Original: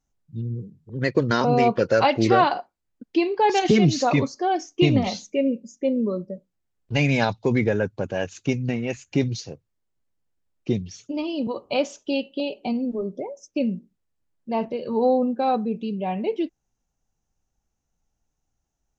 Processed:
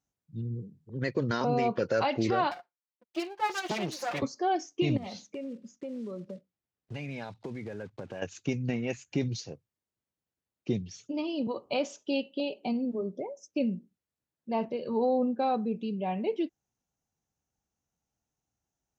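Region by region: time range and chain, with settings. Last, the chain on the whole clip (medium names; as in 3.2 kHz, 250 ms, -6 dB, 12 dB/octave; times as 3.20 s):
2.51–4.22 s: comb filter that takes the minimum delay 5.7 ms + high-pass 520 Hz 6 dB/octave + upward expansion, over -37 dBFS
4.97–8.22 s: block-companded coder 5-bit + compression 10:1, threshold -29 dBFS + distance through air 92 m
whole clip: high-pass 83 Hz; peak limiter -13.5 dBFS; trim -5 dB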